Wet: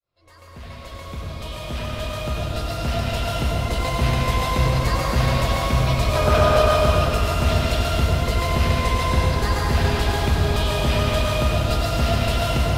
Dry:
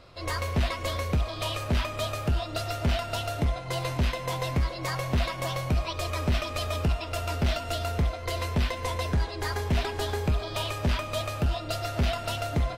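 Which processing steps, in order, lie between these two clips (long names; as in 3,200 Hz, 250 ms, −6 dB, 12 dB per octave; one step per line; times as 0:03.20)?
fade in at the beginning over 4.10 s
gain on a spectral selection 0:06.15–0:06.61, 370–1,700 Hz +10 dB
dense smooth reverb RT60 3.6 s, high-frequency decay 0.85×, pre-delay 80 ms, DRR −4.5 dB
level +2.5 dB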